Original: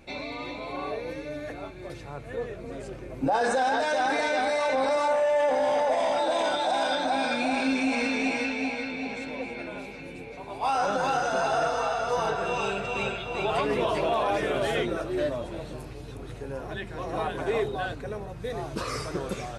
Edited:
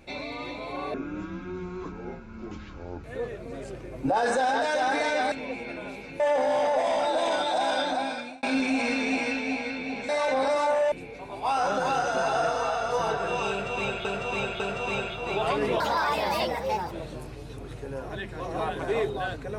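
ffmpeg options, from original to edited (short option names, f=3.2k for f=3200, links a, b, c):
-filter_complex "[0:a]asplit=12[a][b][c][d][e][f][g][h][i][j][k][l];[a]atrim=end=0.944[m];[b]atrim=start=0.94:end=2.22,asetpts=PTS-STARTPTS,asetrate=26901,aresample=44100[n];[c]atrim=start=2.216:end=4.502[o];[d]atrim=start=9.218:end=10.102[p];[e]atrim=start=5.328:end=7.56,asetpts=PTS-STARTPTS,afade=t=out:st=1.672:d=0.56[q];[f]atrim=start=7.56:end=9.222,asetpts=PTS-STARTPTS,afade=t=in:d=0.004:c=hsin[r];[g]atrim=start=4.498:end=5.332[s];[h]atrim=start=10.098:end=13.232[t];[i]atrim=start=12.678:end=13.232[u];[j]atrim=start=12.678:end=13.884[v];[k]atrim=start=13.88:end=15.5,asetpts=PTS-STARTPTS,asetrate=63945,aresample=44100,atrim=end_sample=49270,asetpts=PTS-STARTPTS[w];[l]atrim=start=15.496[x];[m][n]acrossfade=d=0.004:c1=hsin:c2=hsin[y];[y][o]acrossfade=d=0.004:c1=hsin:c2=hsin[z];[z][p]acrossfade=d=0.004:c1=hsin:c2=hsin[aa];[q][r]concat=n=2:v=0:a=1[ab];[aa][ab]acrossfade=d=0.004:c1=hsin:c2=hsin[ac];[ac][s]acrossfade=d=0.004:c1=hsin:c2=hsin[ad];[ad][t]acrossfade=d=0.004:c1=hsin:c2=hsin[ae];[ae][u]acrossfade=d=0.004:c1=hsin:c2=hsin[af];[af][v]acrossfade=d=0.004:c1=hsin:c2=hsin[ag];[ag][w]acrossfade=d=0.004:c1=hsin:c2=hsin[ah];[ah][x]acrossfade=d=0.004:c1=hsin:c2=hsin"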